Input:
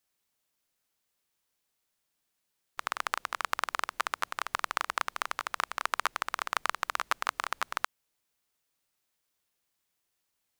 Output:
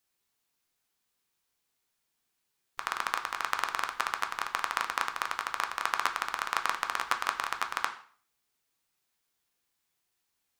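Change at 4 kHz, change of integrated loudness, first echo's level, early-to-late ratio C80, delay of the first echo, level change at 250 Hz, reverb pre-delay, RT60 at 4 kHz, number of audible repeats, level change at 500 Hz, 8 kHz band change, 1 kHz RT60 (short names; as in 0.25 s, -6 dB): +1.0 dB, +1.0 dB, none, 15.5 dB, none, +1.0 dB, 4 ms, 0.40 s, none, -0.5 dB, +0.5 dB, 0.50 s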